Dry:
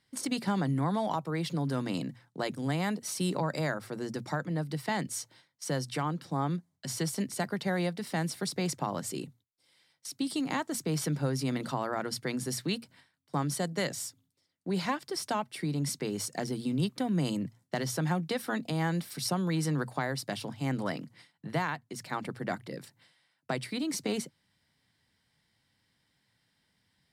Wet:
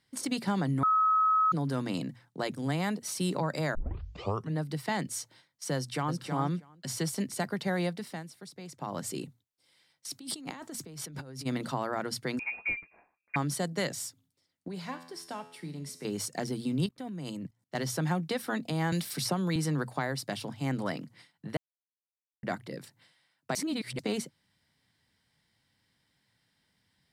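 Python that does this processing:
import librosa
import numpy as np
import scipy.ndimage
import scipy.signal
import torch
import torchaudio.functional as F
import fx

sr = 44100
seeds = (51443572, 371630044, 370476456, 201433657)

y = fx.echo_throw(x, sr, start_s=5.76, length_s=0.44, ms=320, feedback_pct=10, wet_db=-5.5)
y = fx.over_compress(y, sr, threshold_db=-41.0, ratio=-1.0, at=(10.1, 11.45), fade=0.02)
y = fx.freq_invert(y, sr, carrier_hz=2600, at=(12.39, 13.36))
y = fx.comb_fb(y, sr, f0_hz=85.0, decay_s=0.77, harmonics='all', damping=0.0, mix_pct=70, at=(14.68, 16.05))
y = fx.level_steps(y, sr, step_db=19, at=(16.86, 17.75))
y = fx.band_squash(y, sr, depth_pct=70, at=(18.92, 19.56))
y = fx.edit(y, sr, fx.bleep(start_s=0.83, length_s=0.69, hz=1280.0, db=-21.5),
    fx.tape_start(start_s=3.75, length_s=0.82),
    fx.fade_down_up(start_s=7.93, length_s=1.09, db=-13.5, fade_s=0.31),
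    fx.silence(start_s=21.57, length_s=0.86),
    fx.reverse_span(start_s=23.55, length_s=0.44), tone=tone)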